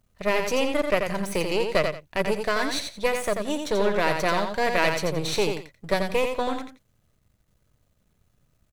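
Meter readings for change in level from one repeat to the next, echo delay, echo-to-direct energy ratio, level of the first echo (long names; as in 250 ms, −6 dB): −13.0 dB, 87 ms, −5.5 dB, −5.5 dB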